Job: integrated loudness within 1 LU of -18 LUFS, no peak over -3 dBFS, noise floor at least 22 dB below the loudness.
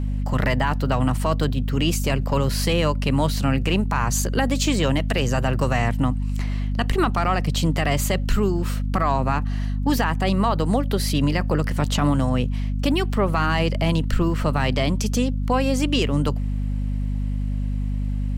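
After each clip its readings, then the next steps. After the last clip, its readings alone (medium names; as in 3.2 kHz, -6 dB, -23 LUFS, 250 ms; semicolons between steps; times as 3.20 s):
tick rate 23 per s; hum 50 Hz; highest harmonic 250 Hz; hum level -21 dBFS; loudness -22.5 LUFS; peak level -8.5 dBFS; loudness target -18.0 LUFS
-> de-click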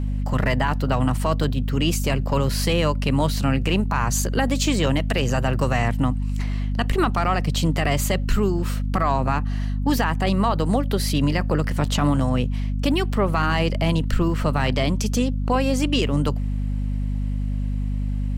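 tick rate 0.44 per s; hum 50 Hz; highest harmonic 250 Hz; hum level -21 dBFS
-> de-hum 50 Hz, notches 5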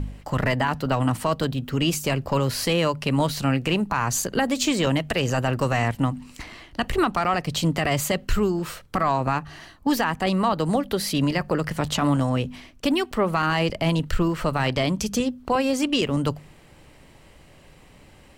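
hum not found; loudness -24.0 LUFS; peak level -10.5 dBFS; loudness target -18.0 LUFS
-> trim +6 dB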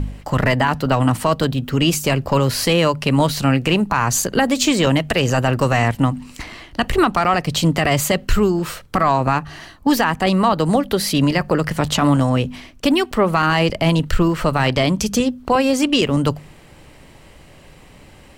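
loudness -18.0 LUFS; peak level -4.5 dBFS; noise floor -45 dBFS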